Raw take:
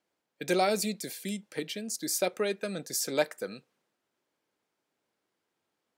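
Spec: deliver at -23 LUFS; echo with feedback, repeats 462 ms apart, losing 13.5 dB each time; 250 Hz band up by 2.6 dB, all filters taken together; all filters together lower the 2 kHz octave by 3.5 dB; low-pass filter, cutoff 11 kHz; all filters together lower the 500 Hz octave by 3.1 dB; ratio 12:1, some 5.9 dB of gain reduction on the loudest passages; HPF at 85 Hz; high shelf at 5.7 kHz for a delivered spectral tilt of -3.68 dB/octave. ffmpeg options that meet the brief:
-af "highpass=85,lowpass=11000,equalizer=f=250:t=o:g=5.5,equalizer=f=500:t=o:g=-5.5,equalizer=f=2000:t=o:g=-5,highshelf=f=5700:g=5.5,acompressor=threshold=0.0355:ratio=12,aecho=1:1:462|924:0.211|0.0444,volume=3.98"

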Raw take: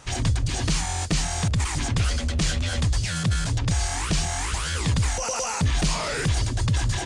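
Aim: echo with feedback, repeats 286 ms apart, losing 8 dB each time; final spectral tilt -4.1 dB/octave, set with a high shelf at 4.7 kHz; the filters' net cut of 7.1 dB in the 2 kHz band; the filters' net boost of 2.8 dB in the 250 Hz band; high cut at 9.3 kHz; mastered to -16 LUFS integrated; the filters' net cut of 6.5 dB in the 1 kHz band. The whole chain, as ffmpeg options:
-af "lowpass=9300,equalizer=f=250:t=o:g=5,equalizer=f=1000:t=o:g=-7.5,equalizer=f=2000:t=o:g=-8,highshelf=f=4700:g=5.5,aecho=1:1:286|572|858|1144|1430:0.398|0.159|0.0637|0.0255|0.0102,volume=2.37"

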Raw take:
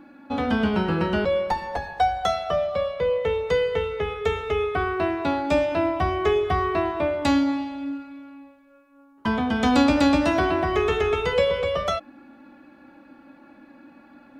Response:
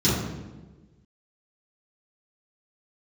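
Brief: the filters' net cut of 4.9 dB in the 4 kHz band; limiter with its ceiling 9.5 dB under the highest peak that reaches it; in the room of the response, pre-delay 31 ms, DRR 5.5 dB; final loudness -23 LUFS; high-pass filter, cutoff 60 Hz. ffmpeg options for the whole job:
-filter_complex "[0:a]highpass=60,equalizer=f=4000:t=o:g=-6.5,alimiter=limit=0.133:level=0:latency=1,asplit=2[s0][s1];[1:a]atrim=start_sample=2205,adelay=31[s2];[s1][s2]afir=irnorm=-1:irlink=0,volume=0.0891[s3];[s0][s3]amix=inputs=2:normalize=0,volume=0.891"

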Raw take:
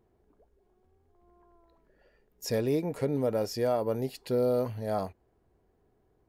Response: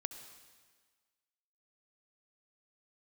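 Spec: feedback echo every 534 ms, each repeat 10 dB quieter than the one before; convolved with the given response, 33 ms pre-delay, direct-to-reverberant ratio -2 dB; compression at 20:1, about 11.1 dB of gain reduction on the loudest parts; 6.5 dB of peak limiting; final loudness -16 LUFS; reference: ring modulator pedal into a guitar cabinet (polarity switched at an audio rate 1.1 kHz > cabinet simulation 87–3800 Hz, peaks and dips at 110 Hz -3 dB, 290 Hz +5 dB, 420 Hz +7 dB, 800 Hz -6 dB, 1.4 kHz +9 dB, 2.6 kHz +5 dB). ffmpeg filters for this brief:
-filter_complex "[0:a]acompressor=threshold=0.02:ratio=20,alimiter=level_in=2.51:limit=0.0631:level=0:latency=1,volume=0.398,aecho=1:1:534|1068|1602|2136:0.316|0.101|0.0324|0.0104,asplit=2[s0][s1];[1:a]atrim=start_sample=2205,adelay=33[s2];[s1][s2]afir=irnorm=-1:irlink=0,volume=1.5[s3];[s0][s3]amix=inputs=2:normalize=0,aeval=exprs='val(0)*sgn(sin(2*PI*1100*n/s))':c=same,highpass=87,equalizer=f=110:t=q:w=4:g=-3,equalizer=f=290:t=q:w=4:g=5,equalizer=f=420:t=q:w=4:g=7,equalizer=f=800:t=q:w=4:g=-6,equalizer=f=1400:t=q:w=4:g=9,equalizer=f=2600:t=q:w=4:g=5,lowpass=f=3800:w=0.5412,lowpass=f=3800:w=1.3066,volume=6.68"

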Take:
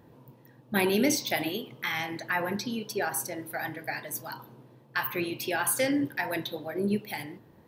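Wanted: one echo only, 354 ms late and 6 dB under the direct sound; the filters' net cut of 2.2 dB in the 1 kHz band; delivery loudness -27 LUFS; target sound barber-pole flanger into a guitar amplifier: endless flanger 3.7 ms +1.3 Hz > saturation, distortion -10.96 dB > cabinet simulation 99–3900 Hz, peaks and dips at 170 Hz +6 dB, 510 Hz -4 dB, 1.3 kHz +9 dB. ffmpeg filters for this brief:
-filter_complex "[0:a]equalizer=f=1000:t=o:g=-5.5,aecho=1:1:354:0.501,asplit=2[s0][s1];[s1]adelay=3.7,afreqshift=1.3[s2];[s0][s2]amix=inputs=2:normalize=1,asoftclip=threshold=0.0335,highpass=99,equalizer=f=170:t=q:w=4:g=6,equalizer=f=510:t=q:w=4:g=-4,equalizer=f=1300:t=q:w=4:g=9,lowpass=f=3900:w=0.5412,lowpass=f=3900:w=1.3066,volume=2.99"

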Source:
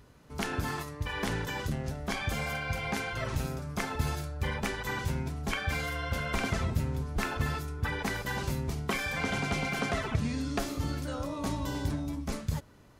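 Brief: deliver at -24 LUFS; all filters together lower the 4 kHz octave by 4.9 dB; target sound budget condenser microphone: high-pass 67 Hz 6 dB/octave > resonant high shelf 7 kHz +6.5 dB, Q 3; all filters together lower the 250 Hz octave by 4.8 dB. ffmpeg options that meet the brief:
-af "highpass=f=67:p=1,equalizer=f=250:t=o:g=-6,equalizer=f=4000:t=o:g=-4,highshelf=f=7000:t=q:w=3:g=6.5,volume=3.35"

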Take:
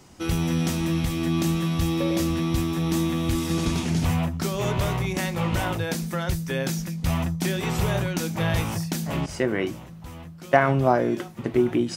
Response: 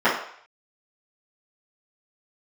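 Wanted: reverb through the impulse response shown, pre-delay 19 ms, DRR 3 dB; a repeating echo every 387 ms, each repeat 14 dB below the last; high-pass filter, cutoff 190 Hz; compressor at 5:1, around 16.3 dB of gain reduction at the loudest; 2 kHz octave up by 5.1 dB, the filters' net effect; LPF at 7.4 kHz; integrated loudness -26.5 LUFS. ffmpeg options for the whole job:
-filter_complex "[0:a]highpass=190,lowpass=7400,equalizer=f=2000:t=o:g=6.5,acompressor=threshold=0.0316:ratio=5,aecho=1:1:387|774:0.2|0.0399,asplit=2[s0][s1];[1:a]atrim=start_sample=2205,adelay=19[s2];[s1][s2]afir=irnorm=-1:irlink=0,volume=0.0631[s3];[s0][s3]amix=inputs=2:normalize=0,volume=1.88"

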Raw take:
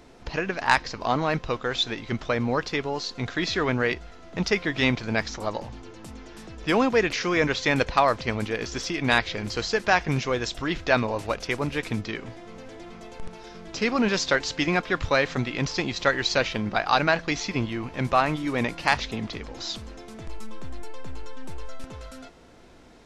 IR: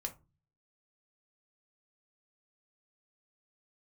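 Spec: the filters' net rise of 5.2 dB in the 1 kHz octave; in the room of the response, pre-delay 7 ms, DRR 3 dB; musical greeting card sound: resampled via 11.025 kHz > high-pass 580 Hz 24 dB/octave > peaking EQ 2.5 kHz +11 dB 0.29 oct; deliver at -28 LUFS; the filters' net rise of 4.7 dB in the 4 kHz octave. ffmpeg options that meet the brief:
-filter_complex "[0:a]equalizer=f=1000:t=o:g=6.5,equalizer=f=4000:t=o:g=4,asplit=2[s0][s1];[1:a]atrim=start_sample=2205,adelay=7[s2];[s1][s2]afir=irnorm=-1:irlink=0,volume=0.794[s3];[s0][s3]amix=inputs=2:normalize=0,aresample=11025,aresample=44100,highpass=f=580:w=0.5412,highpass=f=580:w=1.3066,equalizer=f=2500:t=o:w=0.29:g=11,volume=0.376"

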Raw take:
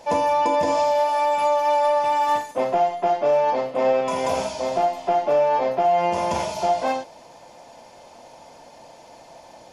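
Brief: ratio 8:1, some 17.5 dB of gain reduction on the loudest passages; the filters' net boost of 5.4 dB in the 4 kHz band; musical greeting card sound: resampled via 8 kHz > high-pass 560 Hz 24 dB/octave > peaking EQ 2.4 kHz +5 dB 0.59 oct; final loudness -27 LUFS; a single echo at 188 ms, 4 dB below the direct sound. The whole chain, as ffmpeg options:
-af "equalizer=f=4000:t=o:g=5.5,acompressor=threshold=0.0178:ratio=8,aecho=1:1:188:0.631,aresample=8000,aresample=44100,highpass=f=560:w=0.5412,highpass=f=560:w=1.3066,equalizer=f=2400:t=o:w=0.59:g=5,volume=3.55"

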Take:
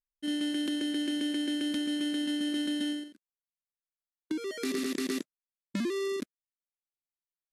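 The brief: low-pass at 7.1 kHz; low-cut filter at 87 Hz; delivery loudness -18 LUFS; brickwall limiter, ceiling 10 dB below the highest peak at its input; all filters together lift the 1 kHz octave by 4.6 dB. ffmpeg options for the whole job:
-af "highpass=87,lowpass=7100,equalizer=f=1000:t=o:g=6,volume=7.08,alimiter=limit=0.316:level=0:latency=1"

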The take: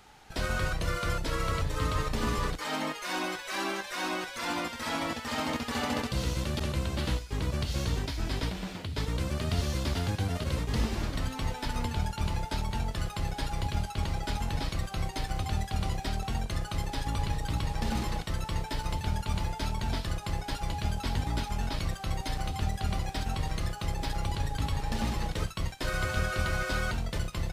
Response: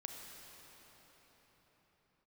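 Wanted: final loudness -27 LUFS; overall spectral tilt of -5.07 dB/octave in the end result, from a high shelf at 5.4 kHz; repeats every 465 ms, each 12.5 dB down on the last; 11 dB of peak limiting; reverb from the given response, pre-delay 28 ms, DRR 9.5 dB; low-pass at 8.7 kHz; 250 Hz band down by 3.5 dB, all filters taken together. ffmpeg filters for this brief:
-filter_complex "[0:a]lowpass=8700,equalizer=f=250:t=o:g=-5,highshelf=f=5400:g=-5.5,alimiter=level_in=1.68:limit=0.0631:level=0:latency=1,volume=0.596,aecho=1:1:465|930|1395:0.237|0.0569|0.0137,asplit=2[s0][s1];[1:a]atrim=start_sample=2205,adelay=28[s2];[s1][s2]afir=irnorm=-1:irlink=0,volume=0.447[s3];[s0][s3]amix=inputs=2:normalize=0,volume=3.35"

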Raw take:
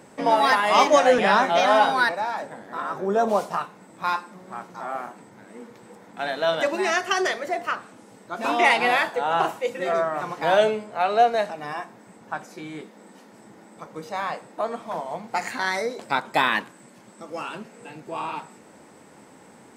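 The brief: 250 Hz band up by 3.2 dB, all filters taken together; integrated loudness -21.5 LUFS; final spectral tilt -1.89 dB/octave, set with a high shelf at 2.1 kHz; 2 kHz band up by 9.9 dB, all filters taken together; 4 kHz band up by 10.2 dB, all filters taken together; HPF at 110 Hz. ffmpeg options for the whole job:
-af "highpass=110,equalizer=f=250:t=o:g=4,equalizer=f=2000:t=o:g=8.5,highshelf=f=2100:g=4.5,equalizer=f=4000:t=o:g=5.5,volume=0.596"

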